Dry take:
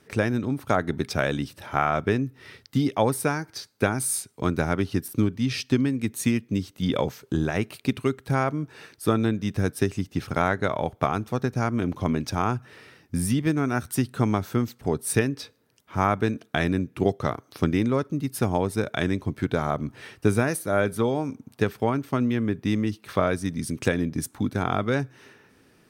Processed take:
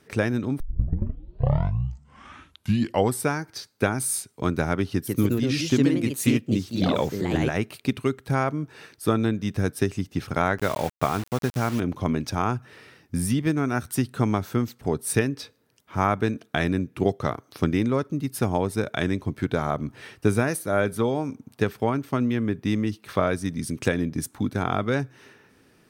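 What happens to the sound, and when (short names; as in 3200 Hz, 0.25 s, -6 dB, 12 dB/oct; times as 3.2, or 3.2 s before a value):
0.6 tape start 2.70 s
4.92–7.7 echoes that change speed 0.149 s, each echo +2 st, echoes 2
10.58–11.8 requantised 6-bit, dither none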